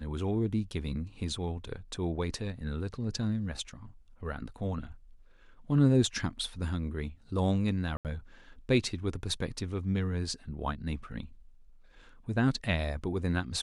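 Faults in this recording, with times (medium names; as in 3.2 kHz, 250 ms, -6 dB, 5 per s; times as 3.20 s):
7.97–8.05 s: dropout 78 ms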